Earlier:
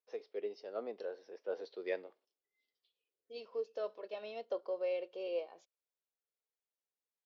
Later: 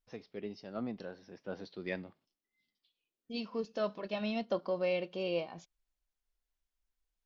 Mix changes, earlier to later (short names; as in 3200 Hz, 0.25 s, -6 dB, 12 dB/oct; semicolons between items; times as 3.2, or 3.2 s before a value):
first voice -6.5 dB; master: remove ladder high-pass 400 Hz, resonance 60%